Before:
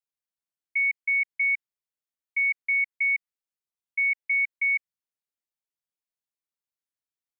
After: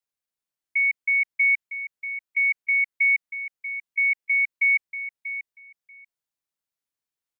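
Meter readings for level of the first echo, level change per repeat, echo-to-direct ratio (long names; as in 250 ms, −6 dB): −11.0 dB, −16.0 dB, −11.0 dB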